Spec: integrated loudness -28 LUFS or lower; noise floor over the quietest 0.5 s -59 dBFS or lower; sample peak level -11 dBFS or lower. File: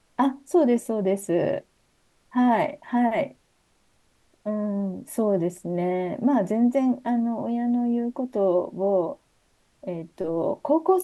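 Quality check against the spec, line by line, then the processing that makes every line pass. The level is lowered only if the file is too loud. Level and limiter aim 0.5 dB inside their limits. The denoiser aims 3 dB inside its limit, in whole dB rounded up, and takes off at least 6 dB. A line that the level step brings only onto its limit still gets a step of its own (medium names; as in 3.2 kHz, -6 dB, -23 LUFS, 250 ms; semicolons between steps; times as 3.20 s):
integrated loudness -25.0 LUFS: fail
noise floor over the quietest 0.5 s -65 dBFS: pass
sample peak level -9.0 dBFS: fail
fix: trim -3.5 dB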